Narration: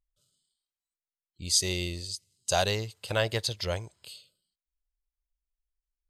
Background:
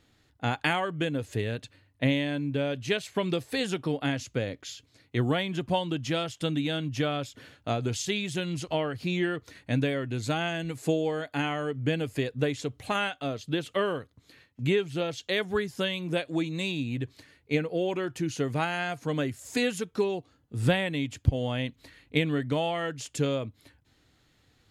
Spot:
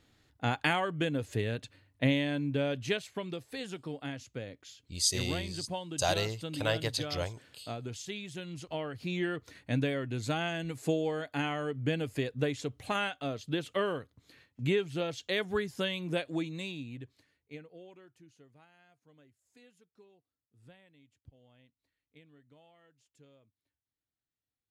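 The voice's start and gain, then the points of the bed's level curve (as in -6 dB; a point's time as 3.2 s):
3.50 s, -3.5 dB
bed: 2.84 s -2 dB
3.26 s -10.5 dB
8.46 s -10.5 dB
9.39 s -3.5 dB
16.27 s -3.5 dB
18.64 s -33 dB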